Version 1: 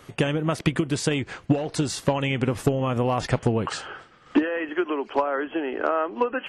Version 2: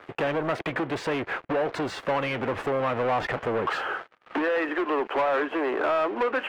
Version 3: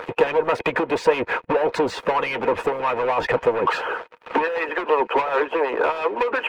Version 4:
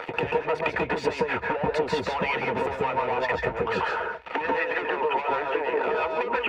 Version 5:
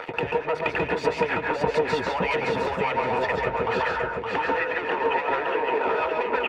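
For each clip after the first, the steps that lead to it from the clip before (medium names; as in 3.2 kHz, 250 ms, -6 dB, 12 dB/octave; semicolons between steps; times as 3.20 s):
treble shelf 7.9 kHz -10 dB; waveshaping leveller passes 5; three-band isolator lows -14 dB, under 330 Hz, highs -21 dB, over 2.8 kHz; trim -8.5 dB
harmonic-percussive split harmonic -16 dB; upward compressor, threshold -34 dBFS; small resonant body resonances 480/930/2500 Hz, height 11 dB, ringing for 45 ms; trim +6.5 dB
compression, threshold -23 dBFS, peak gain reduction 12 dB; reverberation RT60 0.10 s, pre-delay 136 ms, DRR 3 dB; trim -7 dB
feedback delay 566 ms, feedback 26%, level -4 dB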